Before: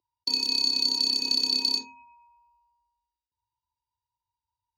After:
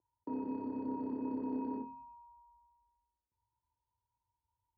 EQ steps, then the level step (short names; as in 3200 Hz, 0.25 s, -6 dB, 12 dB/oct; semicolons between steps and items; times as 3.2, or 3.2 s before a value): Bessel low-pass 840 Hz, order 6; air absorption 220 m; +5.5 dB